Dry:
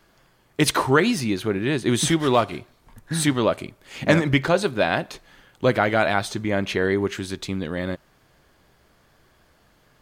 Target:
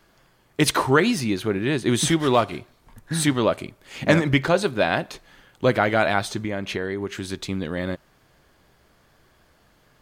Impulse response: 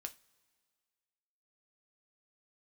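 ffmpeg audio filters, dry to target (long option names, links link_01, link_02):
-filter_complex "[0:a]asettb=1/sr,asplit=3[link_01][link_02][link_03];[link_01]atrim=end=6.414[link_04];[link_02]atrim=start=6.41:end=7.25,asetpts=PTS-STARTPTS,afade=type=in:duration=0.004:curve=qsin,afade=type=out:start_time=0.836:duration=0.004:curve=qsin,acompressor=threshold=-24dB:ratio=6[link_05];[link_03]atrim=start=7.246[link_06];[link_04][link_05]acrossfade=duration=0.004:curve1=hsin:curve2=qsin[link_07];[link_07][link_06]acrossfade=duration=0.004:curve1=qsin:curve2=hsin"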